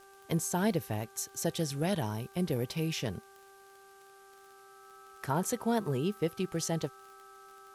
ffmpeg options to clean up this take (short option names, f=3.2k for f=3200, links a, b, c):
-af "adeclick=t=4,bandreject=f=391.9:t=h:w=4,bandreject=f=783.8:t=h:w=4,bandreject=f=1.1757k:t=h:w=4,bandreject=f=1.5676k:t=h:w=4,bandreject=f=1.3k:w=30,agate=range=-21dB:threshold=-48dB"